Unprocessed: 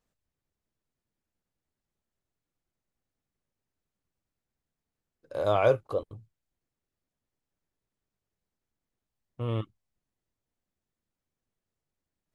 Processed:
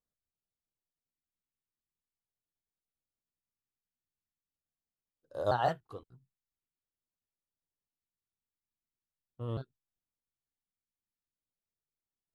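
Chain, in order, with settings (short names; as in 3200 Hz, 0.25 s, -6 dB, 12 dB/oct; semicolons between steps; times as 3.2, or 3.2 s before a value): trilling pitch shifter +3.5 st, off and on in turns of 0.29 s; LFO notch square 0.44 Hz 570–2300 Hz; upward expander 1.5:1, over -44 dBFS; gain -2.5 dB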